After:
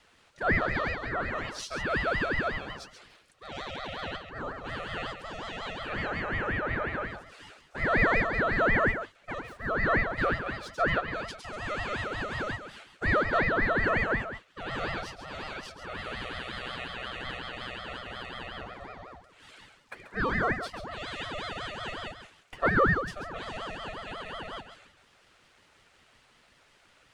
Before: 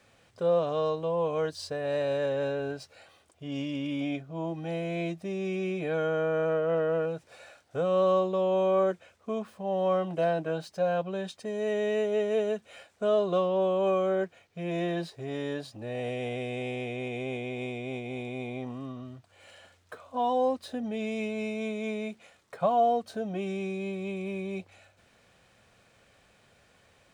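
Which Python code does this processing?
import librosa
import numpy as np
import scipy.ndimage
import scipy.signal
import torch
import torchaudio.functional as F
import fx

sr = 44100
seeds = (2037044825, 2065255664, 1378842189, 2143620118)

p1 = fx.band_invert(x, sr, width_hz=500)
p2 = fx.weighting(p1, sr, curve='A')
p3 = p2 + fx.echo_single(p2, sr, ms=136, db=-9.0, dry=0)
p4 = fx.ring_lfo(p3, sr, carrier_hz=660.0, swing_pct=55, hz=5.5)
y = p4 * librosa.db_to_amplitude(3.5)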